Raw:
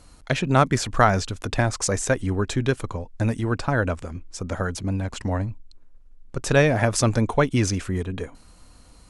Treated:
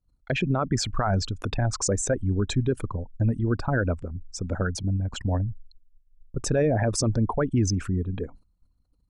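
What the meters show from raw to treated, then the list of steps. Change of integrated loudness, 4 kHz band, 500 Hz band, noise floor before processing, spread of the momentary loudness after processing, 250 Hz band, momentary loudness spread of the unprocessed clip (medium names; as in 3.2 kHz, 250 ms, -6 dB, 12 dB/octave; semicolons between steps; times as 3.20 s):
-3.0 dB, -2.5 dB, -4.0 dB, -50 dBFS, 9 LU, -2.0 dB, 13 LU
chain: resonances exaggerated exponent 2; peak limiter -14.5 dBFS, peak gain reduction 11.5 dB; expander -37 dBFS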